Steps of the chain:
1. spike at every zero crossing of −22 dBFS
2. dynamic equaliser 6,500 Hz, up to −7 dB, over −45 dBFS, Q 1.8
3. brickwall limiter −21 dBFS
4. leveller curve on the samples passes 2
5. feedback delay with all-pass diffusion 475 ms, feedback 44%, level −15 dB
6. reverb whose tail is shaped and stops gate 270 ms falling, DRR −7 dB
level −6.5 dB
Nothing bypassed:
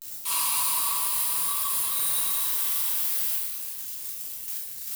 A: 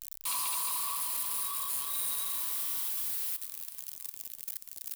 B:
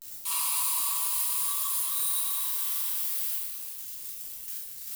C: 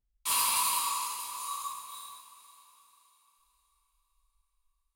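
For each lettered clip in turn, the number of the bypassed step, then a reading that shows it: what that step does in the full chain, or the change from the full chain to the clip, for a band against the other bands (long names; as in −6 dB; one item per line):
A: 6, change in crest factor −5.0 dB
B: 4, 8 kHz band +3.0 dB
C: 1, change in crest factor +5.0 dB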